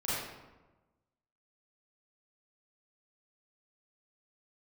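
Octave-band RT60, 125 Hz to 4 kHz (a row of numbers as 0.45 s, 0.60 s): 1.4 s, 1.3 s, 1.2 s, 1.1 s, 0.90 s, 0.70 s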